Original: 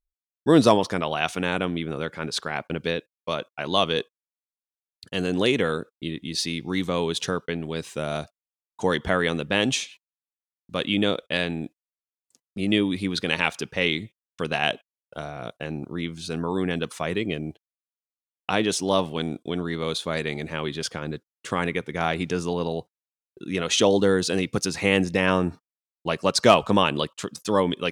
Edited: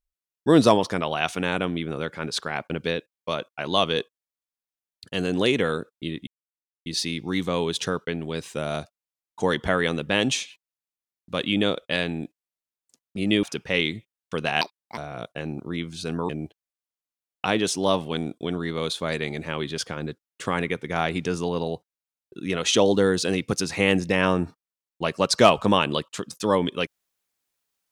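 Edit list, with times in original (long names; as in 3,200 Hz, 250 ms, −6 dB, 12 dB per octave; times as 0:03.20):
0:06.27: splice in silence 0.59 s
0:12.84–0:13.50: remove
0:14.68–0:15.22: play speed 149%
0:16.54–0:17.34: remove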